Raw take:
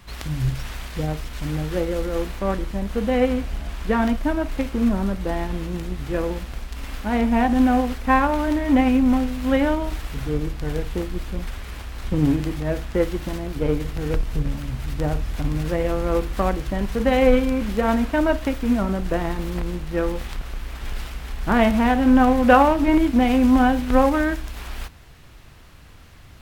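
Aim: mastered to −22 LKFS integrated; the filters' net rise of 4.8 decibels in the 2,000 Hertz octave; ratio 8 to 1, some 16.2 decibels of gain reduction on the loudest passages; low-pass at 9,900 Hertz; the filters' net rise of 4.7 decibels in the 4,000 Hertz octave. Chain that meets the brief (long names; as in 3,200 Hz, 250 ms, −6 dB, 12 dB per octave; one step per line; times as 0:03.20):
low-pass filter 9,900 Hz
parametric band 2,000 Hz +5.5 dB
parametric band 4,000 Hz +4 dB
downward compressor 8 to 1, threshold −25 dBFS
level +8.5 dB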